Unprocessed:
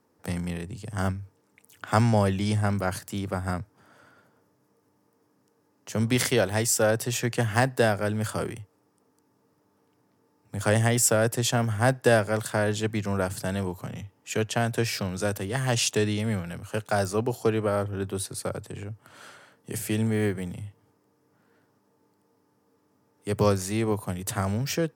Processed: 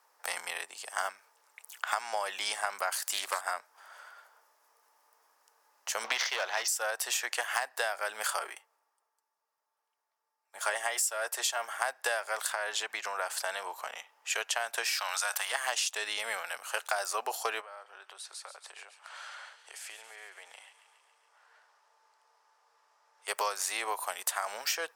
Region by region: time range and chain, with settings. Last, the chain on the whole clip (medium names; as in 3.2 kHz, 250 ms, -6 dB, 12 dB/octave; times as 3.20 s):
2.92–3.41 s: de-esser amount 75% + treble shelf 3.3 kHz +11.5 dB + loudspeaker Doppler distortion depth 0.24 ms
6.04–6.68 s: elliptic low-pass 6.1 kHz + waveshaping leveller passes 2
8.39–11.82 s: comb of notches 250 Hz + three bands expanded up and down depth 40%
12.52–14.34 s: treble shelf 7 kHz -7 dB + compression 4:1, threshold -27 dBFS
14.92–15.52 s: high-pass 710 Hz 24 dB/octave + level flattener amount 50%
17.61–23.28 s: band-pass 380–6700 Hz + compression, threshold -47 dBFS + feedback echo behind a high-pass 139 ms, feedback 68%, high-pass 2.2 kHz, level -10.5 dB
whole clip: high-pass 740 Hz 24 dB/octave; compression 16:1, threshold -34 dBFS; trim +6.5 dB